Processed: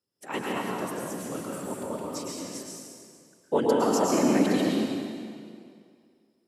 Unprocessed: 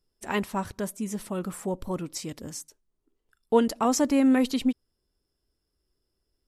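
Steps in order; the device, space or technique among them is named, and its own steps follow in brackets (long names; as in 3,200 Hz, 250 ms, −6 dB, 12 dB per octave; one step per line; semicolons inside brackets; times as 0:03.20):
whispering ghost (random phases in short frames; high-pass filter 220 Hz 12 dB per octave; convolution reverb RT60 2.2 s, pre-delay 103 ms, DRR −3.5 dB)
level −4.5 dB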